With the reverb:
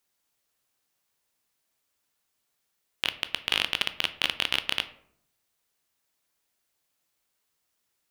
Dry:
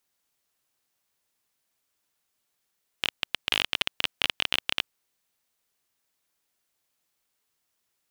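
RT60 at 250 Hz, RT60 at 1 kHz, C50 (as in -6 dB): 0.85 s, 0.65 s, 15.0 dB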